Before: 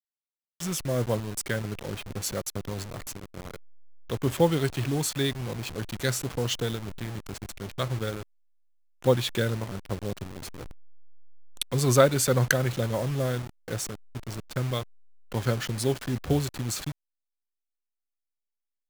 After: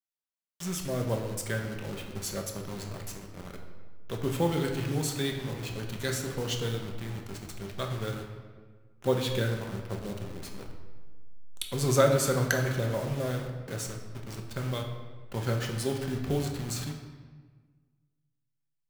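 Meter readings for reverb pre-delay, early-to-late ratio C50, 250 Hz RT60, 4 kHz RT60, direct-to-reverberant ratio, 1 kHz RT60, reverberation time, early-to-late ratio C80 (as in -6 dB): 5 ms, 5.5 dB, 1.7 s, 1.0 s, 2.0 dB, 1.4 s, 1.5 s, 7.5 dB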